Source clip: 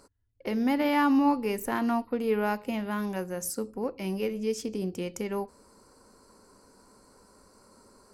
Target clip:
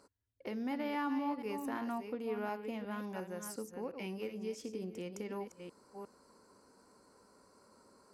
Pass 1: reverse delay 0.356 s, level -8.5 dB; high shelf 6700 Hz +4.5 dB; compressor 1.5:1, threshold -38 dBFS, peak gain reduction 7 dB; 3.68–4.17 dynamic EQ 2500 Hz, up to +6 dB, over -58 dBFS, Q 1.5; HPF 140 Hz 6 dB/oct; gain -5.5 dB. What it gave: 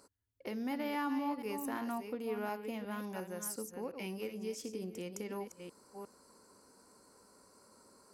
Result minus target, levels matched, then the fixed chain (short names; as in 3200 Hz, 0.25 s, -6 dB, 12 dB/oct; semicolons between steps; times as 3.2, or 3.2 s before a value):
8000 Hz band +5.5 dB
reverse delay 0.356 s, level -8.5 dB; high shelf 6700 Hz -6.5 dB; compressor 1.5:1, threshold -38 dBFS, peak gain reduction 7 dB; 3.68–4.17 dynamic EQ 2500 Hz, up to +6 dB, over -58 dBFS, Q 1.5; HPF 140 Hz 6 dB/oct; gain -5.5 dB